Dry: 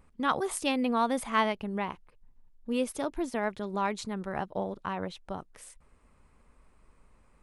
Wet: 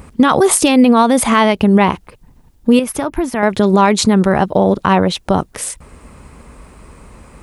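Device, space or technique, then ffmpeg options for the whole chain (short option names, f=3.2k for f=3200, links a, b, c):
mastering chain: -filter_complex "[0:a]highpass=50,equalizer=f=1.5k:t=o:w=2.9:g=-4,acompressor=threshold=-33dB:ratio=2.5,asoftclip=type=hard:threshold=-23dB,alimiter=level_in=28dB:limit=-1dB:release=50:level=0:latency=1,asettb=1/sr,asplit=3[a][b][c];[a]atrim=end=2.794[d];[b]atrim=start=2.79:end=3.43,asetpts=PTS-STARTPTS,afade=t=in:d=0.004:c=qsin,afade=t=out:st=0.636:d=0.004:c=qsin,equalizer=f=250:t=o:w=1:g=-6,equalizer=f=500:t=o:w=1:g=-8,equalizer=f=4k:t=o:w=1:g=-9,equalizer=f=8k:t=o:w=1:g=-10[e];[c]atrim=start=3.426[f];[d][e]acrossfade=d=0.004:c1=hsin:c2=qsin[g];[g][f]acrossfade=d=0.004:c1=qsin:c2=hsin,volume=-1dB"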